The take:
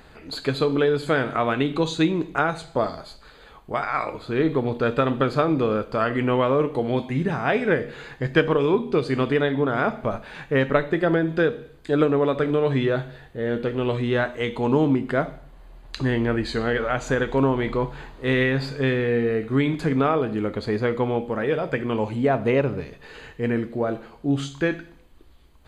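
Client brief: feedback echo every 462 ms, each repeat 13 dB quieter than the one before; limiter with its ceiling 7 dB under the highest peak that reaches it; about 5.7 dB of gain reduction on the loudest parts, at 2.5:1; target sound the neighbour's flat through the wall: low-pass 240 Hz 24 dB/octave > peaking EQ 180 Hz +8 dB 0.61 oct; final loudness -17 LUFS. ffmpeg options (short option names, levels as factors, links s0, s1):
-af "acompressor=threshold=0.0708:ratio=2.5,alimiter=limit=0.126:level=0:latency=1,lowpass=f=240:w=0.5412,lowpass=f=240:w=1.3066,equalizer=f=180:t=o:w=0.61:g=8,aecho=1:1:462|924|1386:0.224|0.0493|0.0108,volume=5.31"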